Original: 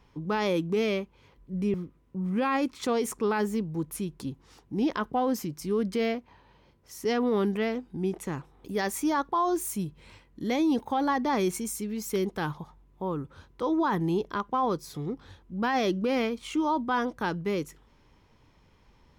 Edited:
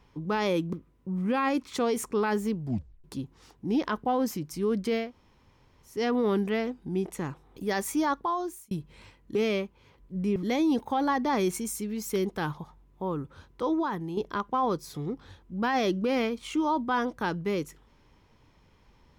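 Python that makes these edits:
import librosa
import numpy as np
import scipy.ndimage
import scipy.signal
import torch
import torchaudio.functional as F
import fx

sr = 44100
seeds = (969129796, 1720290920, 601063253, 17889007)

y = fx.edit(x, sr, fx.move(start_s=0.73, length_s=1.08, to_s=10.43),
    fx.tape_stop(start_s=3.69, length_s=0.43),
    fx.room_tone_fill(start_s=6.13, length_s=0.89, crossfade_s=0.24),
    fx.fade_out_span(start_s=9.23, length_s=0.56),
    fx.fade_out_to(start_s=13.71, length_s=0.46, curve='qua', floor_db=-8.5), tone=tone)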